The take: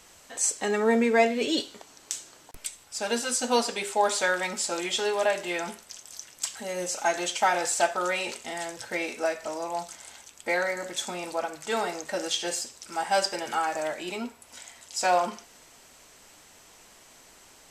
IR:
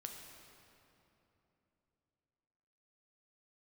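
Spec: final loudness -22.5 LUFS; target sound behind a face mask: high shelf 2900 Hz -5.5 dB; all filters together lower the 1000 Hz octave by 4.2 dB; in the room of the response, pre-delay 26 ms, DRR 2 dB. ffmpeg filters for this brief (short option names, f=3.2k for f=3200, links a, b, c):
-filter_complex "[0:a]equalizer=f=1k:t=o:g=-5.5,asplit=2[a][b];[1:a]atrim=start_sample=2205,adelay=26[c];[b][c]afir=irnorm=-1:irlink=0,volume=1.5dB[d];[a][d]amix=inputs=2:normalize=0,highshelf=f=2.9k:g=-5.5,volume=6dB"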